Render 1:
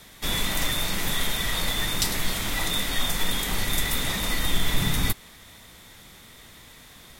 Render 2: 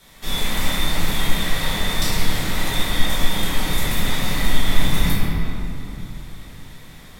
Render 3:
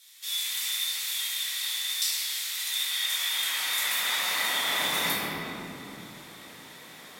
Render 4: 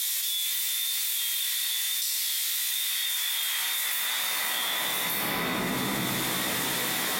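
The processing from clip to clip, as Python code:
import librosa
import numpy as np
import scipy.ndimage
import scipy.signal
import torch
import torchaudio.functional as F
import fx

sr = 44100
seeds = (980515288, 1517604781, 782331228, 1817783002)

y1 = fx.room_shoebox(x, sr, seeds[0], volume_m3=120.0, walls='hard', distance_m=1.1)
y1 = F.gain(torch.from_numpy(y1), -5.5).numpy()
y2 = fx.filter_sweep_highpass(y1, sr, from_hz=3500.0, to_hz=330.0, start_s=2.64, end_s=5.58, q=0.7)
y3 = fx.high_shelf(y2, sr, hz=8700.0, db=9.0)
y3 = fx.doubler(y3, sr, ms=16.0, db=-4.0)
y3 = fx.env_flatten(y3, sr, amount_pct=100)
y3 = F.gain(torch.from_numpy(y3), -7.5).numpy()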